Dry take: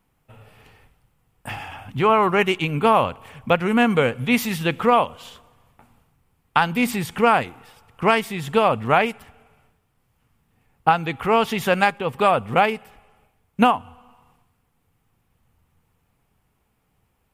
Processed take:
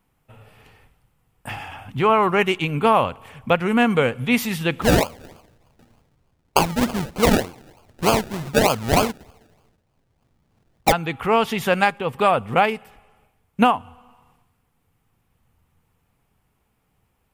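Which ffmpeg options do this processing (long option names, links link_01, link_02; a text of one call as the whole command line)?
ffmpeg -i in.wav -filter_complex "[0:a]asplit=3[link_01][link_02][link_03];[link_01]afade=type=out:start_time=4.81:duration=0.02[link_04];[link_02]acrusher=samples=33:mix=1:aa=0.000001:lfo=1:lforange=19.8:lforate=3.3,afade=type=in:start_time=4.81:duration=0.02,afade=type=out:start_time=10.91:duration=0.02[link_05];[link_03]afade=type=in:start_time=10.91:duration=0.02[link_06];[link_04][link_05][link_06]amix=inputs=3:normalize=0" out.wav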